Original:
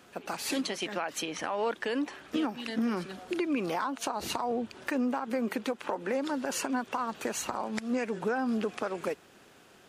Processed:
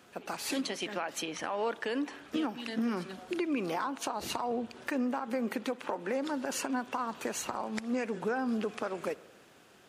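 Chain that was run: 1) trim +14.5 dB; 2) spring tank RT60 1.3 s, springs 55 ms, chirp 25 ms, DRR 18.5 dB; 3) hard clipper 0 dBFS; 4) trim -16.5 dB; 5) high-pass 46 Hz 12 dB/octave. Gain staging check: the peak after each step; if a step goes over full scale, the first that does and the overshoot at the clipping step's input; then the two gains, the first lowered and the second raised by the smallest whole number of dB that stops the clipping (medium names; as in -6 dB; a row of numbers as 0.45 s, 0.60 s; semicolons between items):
-2.0 dBFS, -2.0 dBFS, -2.0 dBFS, -18.5 dBFS, -18.0 dBFS; nothing clips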